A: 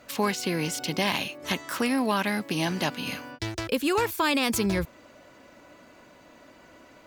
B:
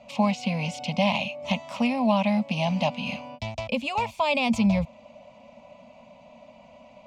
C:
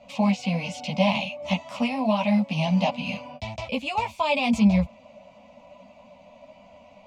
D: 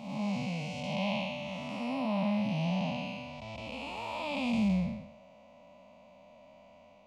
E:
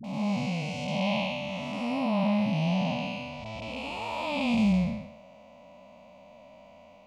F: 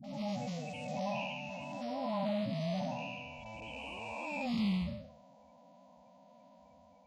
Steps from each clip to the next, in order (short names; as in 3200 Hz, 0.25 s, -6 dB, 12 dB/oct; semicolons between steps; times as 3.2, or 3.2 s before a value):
EQ curve 120 Hz 0 dB, 230 Hz +8 dB, 350 Hz -27 dB, 590 Hz +8 dB, 1000 Hz +2 dB, 1600 Hz -22 dB, 2400 Hz +4 dB, 4000 Hz -5 dB, 7100 Hz -9 dB, 14000 Hz -30 dB
chorus voices 4, 1.3 Hz, delay 13 ms, depth 3 ms; gain +3 dB
time blur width 0.316 s; gain -5 dB
dispersion highs, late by 43 ms, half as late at 450 Hz; gain +4.5 dB
bin magnitudes rounded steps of 30 dB; gain -8 dB